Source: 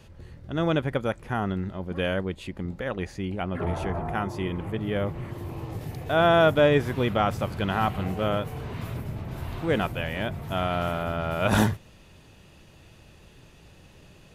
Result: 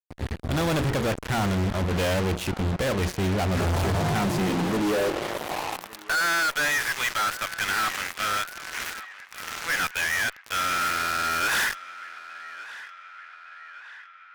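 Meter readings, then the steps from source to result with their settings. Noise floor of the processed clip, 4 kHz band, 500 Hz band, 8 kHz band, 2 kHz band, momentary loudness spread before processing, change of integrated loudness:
-48 dBFS, +6.0 dB, -4.0 dB, n/a, +7.0 dB, 14 LU, +1.5 dB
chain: high-pass sweep 62 Hz -> 1700 Hz, 3.59–6.26; notches 60/120/180/240/300/360/420/480 Hz; fuzz box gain 45 dB, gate -39 dBFS; on a send: narrowing echo 1.164 s, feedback 64%, band-pass 1700 Hz, level -15 dB; on the sum: gain -9 dB

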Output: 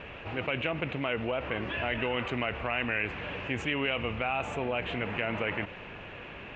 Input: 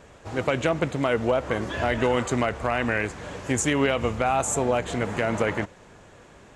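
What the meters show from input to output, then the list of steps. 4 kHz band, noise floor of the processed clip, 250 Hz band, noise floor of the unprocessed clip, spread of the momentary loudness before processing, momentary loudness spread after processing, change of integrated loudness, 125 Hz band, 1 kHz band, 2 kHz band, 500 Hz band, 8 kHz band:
-1.5 dB, -44 dBFS, -8.5 dB, -51 dBFS, 6 LU, 8 LU, -6.5 dB, -7.5 dB, -8.0 dB, -2.5 dB, -9.0 dB, under -25 dB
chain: ladder low-pass 2900 Hz, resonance 70%; fast leveller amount 50%

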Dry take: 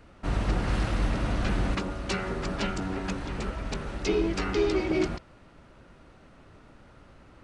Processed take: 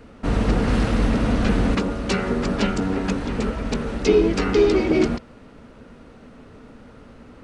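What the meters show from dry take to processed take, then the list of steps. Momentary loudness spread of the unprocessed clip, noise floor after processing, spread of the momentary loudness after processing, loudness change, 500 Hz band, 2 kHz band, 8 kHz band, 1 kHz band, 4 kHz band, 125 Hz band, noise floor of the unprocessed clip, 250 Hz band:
8 LU, -46 dBFS, 8 LU, +8.0 dB, +9.5 dB, +5.5 dB, +5.5 dB, +6.0 dB, +5.5 dB, +6.5 dB, -54 dBFS, +10.0 dB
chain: small resonant body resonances 240/450 Hz, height 11 dB, ringing for 60 ms; gain +5.5 dB

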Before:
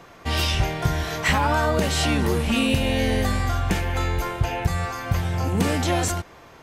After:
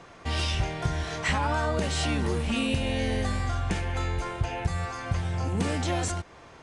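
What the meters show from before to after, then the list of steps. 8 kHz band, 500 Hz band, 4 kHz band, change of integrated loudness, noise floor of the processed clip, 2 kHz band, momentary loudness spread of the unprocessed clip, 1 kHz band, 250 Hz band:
-6.0 dB, -6.0 dB, -6.0 dB, -5.5 dB, -50 dBFS, -6.0 dB, 5 LU, -6.0 dB, -6.0 dB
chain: bell 77 Hz +2 dB; in parallel at -2 dB: compressor, threshold -33 dBFS, peak gain reduction 17.5 dB; on the sum: downsampling 22050 Hz; gain -7.5 dB

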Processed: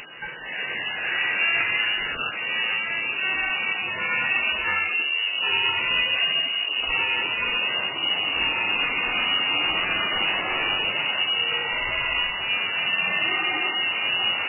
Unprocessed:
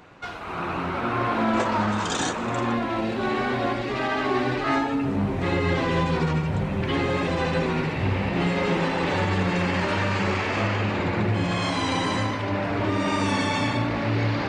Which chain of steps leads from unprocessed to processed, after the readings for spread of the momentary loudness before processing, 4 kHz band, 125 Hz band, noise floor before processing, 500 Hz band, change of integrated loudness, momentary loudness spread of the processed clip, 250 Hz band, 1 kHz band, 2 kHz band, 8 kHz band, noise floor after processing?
3 LU, +12.0 dB, -21.0 dB, -29 dBFS, -11.0 dB, +2.5 dB, 4 LU, -17.0 dB, -5.0 dB, +7.0 dB, under -35 dB, -31 dBFS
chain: upward compressor, threshold -30 dBFS; inverted band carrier 3000 Hz; MP3 8 kbps 8000 Hz

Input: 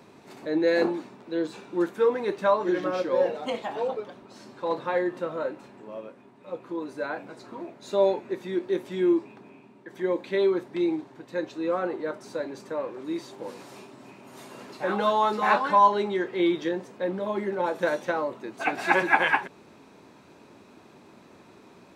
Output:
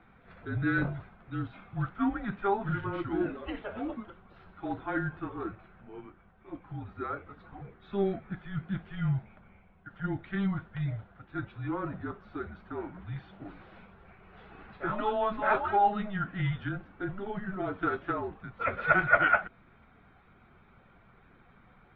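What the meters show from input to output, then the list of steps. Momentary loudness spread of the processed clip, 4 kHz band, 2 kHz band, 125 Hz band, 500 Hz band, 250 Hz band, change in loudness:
21 LU, -11.0 dB, -2.0 dB, +9.5 dB, -10.5 dB, -5.0 dB, -5.5 dB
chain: bin magnitudes rounded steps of 15 dB; mistuned SSB -200 Hz 160–3500 Hz; bell 1400 Hz +9.5 dB 0.61 oct; gain -7 dB

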